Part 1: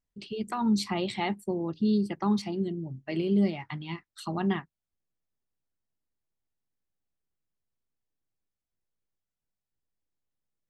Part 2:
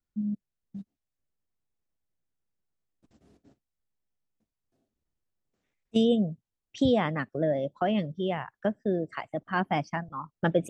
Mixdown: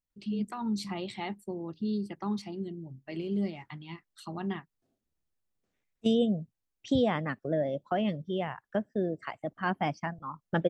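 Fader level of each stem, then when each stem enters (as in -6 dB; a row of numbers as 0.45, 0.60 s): -6.5, -2.5 dB; 0.00, 0.10 s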